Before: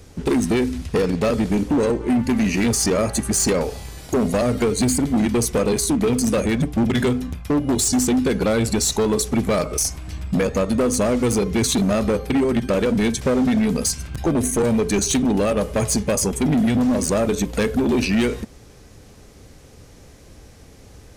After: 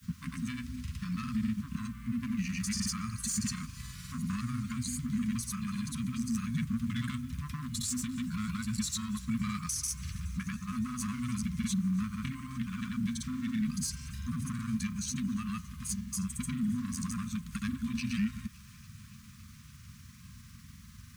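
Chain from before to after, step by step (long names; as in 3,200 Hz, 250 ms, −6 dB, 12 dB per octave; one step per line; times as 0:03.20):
high-pass filter 92 Hz 12 dB per octave
low-shelf EQ 440 Hz +6 dB
downward compressor 2 to 1, threshold −29 dBFS, peak gain reduction 10 dB
granular cloud, pitch spread up and down by 0 semitones
bit-depth reduction 10 bits, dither triangular
linear-phase brick-wall band-stop 250–1,000 Hz
on a send: delay with a high-pass on its return 282 ms, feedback 82%, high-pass 1,400 Hz, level −22.5 dB
on the sum: level −5 dB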